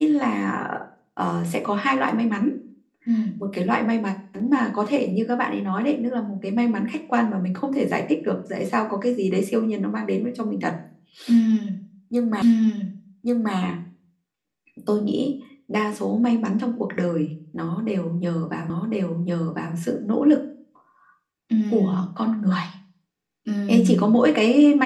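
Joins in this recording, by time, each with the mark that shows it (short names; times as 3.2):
12.42 repeat of the last 1.13 s
18.7 repeat of the last 1.05 s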